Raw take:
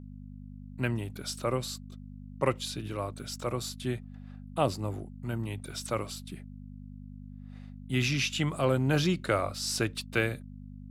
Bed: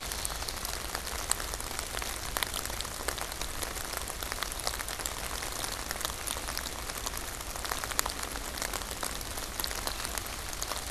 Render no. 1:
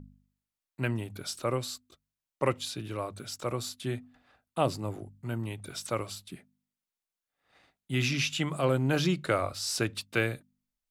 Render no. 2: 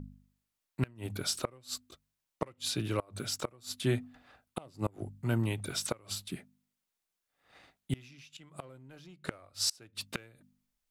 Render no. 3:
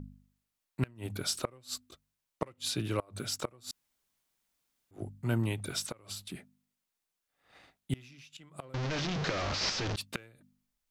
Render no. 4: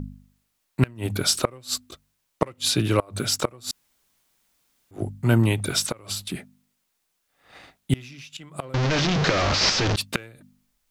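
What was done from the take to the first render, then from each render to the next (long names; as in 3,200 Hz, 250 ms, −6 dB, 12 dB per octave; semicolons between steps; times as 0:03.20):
hum removal 50 Hz, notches 5
in parallel at −4 dB: hard clipping −25.5 dBFS, distortion −10 dB; on the sum: gate with flip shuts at −19 dBFS, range −29 dB
0:03.71–0:04.91: fill with room tone; 0:05.83–0:06.35: downward compressor 2 to 1, threshold −39 dBFS; 0:08.74–0:09.96: linear delta modulator 32 kbit/s, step −27 dBFS
level +11.5 dB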